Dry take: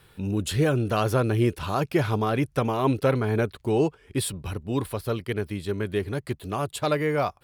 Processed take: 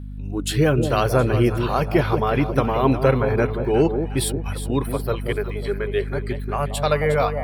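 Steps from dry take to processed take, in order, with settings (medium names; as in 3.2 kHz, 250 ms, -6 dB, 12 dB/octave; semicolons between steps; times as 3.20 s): spectral noise reduction 15 dB; hum 50 Hz, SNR 11 dB; echo whose repeats swap between lows and highs 180 ms, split 820 Hz, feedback 64%, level -7 dB; trim +4.5 dB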